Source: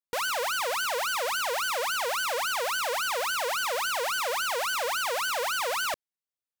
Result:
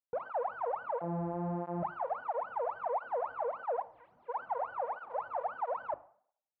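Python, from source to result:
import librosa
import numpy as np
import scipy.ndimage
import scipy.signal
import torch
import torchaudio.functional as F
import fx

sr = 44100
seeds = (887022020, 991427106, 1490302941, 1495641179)

y = fx.sample_sort(x, sr, block=256, at=(1.01, 1.83))
y = fx.hum_notches(y, sr, base_hz=50, count=7)
y = fx.overflow_wrap(y, sr, gain_db=35.5, at=(3.81, 4.28), fade=0.02)
y = fx.ladder_lowpass(y, sr, hz=1000.0, resonance_pct=45)
y = fx.rev_schroeder(y, sr, rt60_s=0.58, comb_ms=26, drr_db=16.0)
y = fx.flanger_cancel(y, sr, hz=1.5, depth_ms=5.4)
y = F.gain(torch.from_numpy(y), 4.5).numpy()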